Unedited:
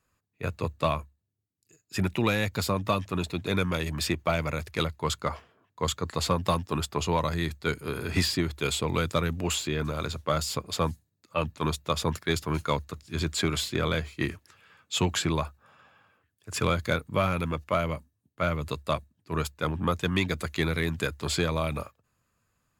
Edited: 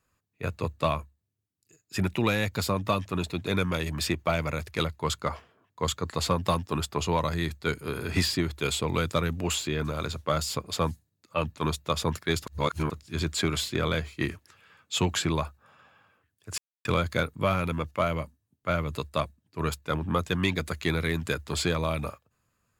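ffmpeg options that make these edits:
-filter_complex "[0:a]asplit=4[s0][s1][s2][s3];[s0]atrim=end=12.472[s4];[s1]atrim=start=12.468:end=12.902,asetpts=PTS-STARTPTS,areverse[s5];[s2]atrim=start=12.898:end=16.58,asetpts=PTS-STARTPTS,afade=t=out:st=3.678:d=0.004:c=hsin,apad=pad_dur=0.27[s6];[s3]atrim=start=16.58,asetpts=PTS-STARTPTS,afade=t=in:d=0.004:c=hsin[s7];[s4][s5]acrossfade=d=0.004:c1=hsin:c2=hsin[s8];[s6][s7]concat=n=2:v=0:a=1[s9];[s8][s9]acrossfade=d=0.004:c1=hsin:c2=hsin"

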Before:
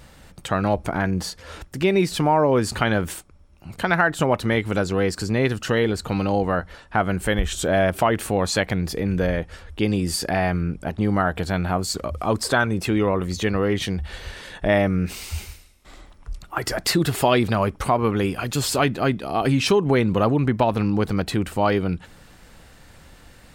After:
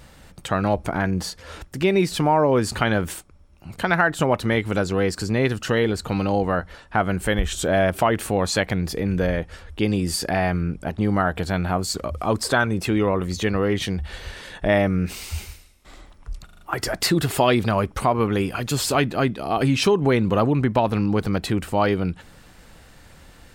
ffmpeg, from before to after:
-filter_complex "[0:a]asplit=5[s0][s1][s2][s3][s4];[s0]atrim=end=16.492[s5];[s1]atrim=start=16.448:end=16.492[s6];[s2]atrim=start=16.448:end=16.492[s7];[s3]atrim=start=16.448:end=16.492[s8];[s4]atrim=start=16.448[s9];[s5][s6]acrossfade=d=0.004:c1=hsin:c2=hsin[s10];[s10][s7]acrossfade=d=0.004:c1=hsin:c2=hsin[s11];[s11][s8]acrossfade=d=0.004:c1=hsin:c2=hsin[s12];[s12][s9]acrossfade=d=0.004:c1=hsin:c2=hsin"

